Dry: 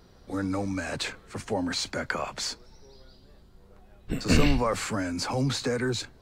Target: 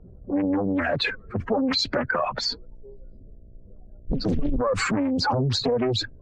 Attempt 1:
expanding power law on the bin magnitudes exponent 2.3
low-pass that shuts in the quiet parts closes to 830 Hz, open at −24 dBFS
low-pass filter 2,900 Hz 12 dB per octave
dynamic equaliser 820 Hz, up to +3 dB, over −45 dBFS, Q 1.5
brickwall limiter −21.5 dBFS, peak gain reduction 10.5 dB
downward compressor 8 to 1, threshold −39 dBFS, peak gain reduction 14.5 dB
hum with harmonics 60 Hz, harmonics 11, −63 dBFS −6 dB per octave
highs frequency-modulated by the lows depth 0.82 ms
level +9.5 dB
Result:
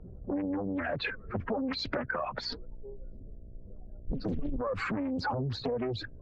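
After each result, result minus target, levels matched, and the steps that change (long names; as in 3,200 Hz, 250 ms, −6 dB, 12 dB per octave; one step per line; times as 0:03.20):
downward compressor: peak gain reduction +9 dB; 4,000 Hz band −3.5 dB
change: downward compressor 8 to 1, threshold −28.5 dBFS, peak gain reduction 5.5 dB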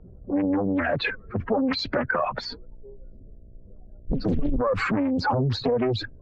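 4,000 Hz band −5.5 dB
remove: low-pass filter 2,900 Hz 12 dB per octave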